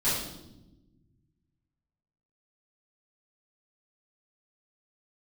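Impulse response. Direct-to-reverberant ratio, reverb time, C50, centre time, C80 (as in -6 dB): -13.0 dB, no single decay rate, 1.0 dB, 62 ms, 4.5 dB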